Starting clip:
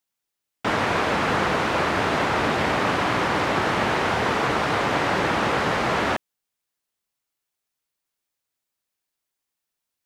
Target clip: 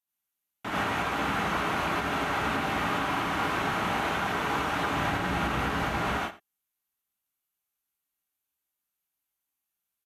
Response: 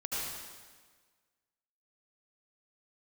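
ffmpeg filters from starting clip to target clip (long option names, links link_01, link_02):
-filter_complex "[0:a]asettb=1/sr,asplit=3[link_01][link_02][link_03];[link_01]atrim=end=4.884[link_04];[link_02]atrim=start=4.88:end=6.07,asetpts=PTS-STARTPTS,afade=type=in:duration=0.004:curve=qsin,afade=type=out:start_time=1.186:duration=0.004:curve=qsin,lowshelf=frequency=150:gain=10[link_05];[link_03]atrim=start=6.066[link_06];[link_04][link_05]acrossfade=duration=0.004:curve1=hsin:curve2=qsin[link_07];[link_07][link_06]acrossfade=duration=0.004:curve1=qsin:curve2=hsin,asplit=2[link_08][link_09];[link_09]adelay=87.46,volume=-17dB,highshelf=frequency=4000:gain=-1.97[link_10];[link_08][link_10]amix=inputs=2:normalize=0[link_11];[1:a]atrim=start_sample=2205,afade=type=out:start_time=0.19:duration=0.01,atrim=end_sample=8820[link_12];[link_11][link_12]afir=irnorm=-1:irlink=0,aresample=32000,aresample=44100,equalizer=frequency=500:width_type=o:width=0.33:gain=-10,equalizer=frequency=5000:width_type=o:width=0.33:gain=-6,equalizer=frequency=12500:width_type=o:width=0.33:gain=11,alimiter=limit=-11.5dB:level=0:latency=1:release=302,volume=-6.5dB"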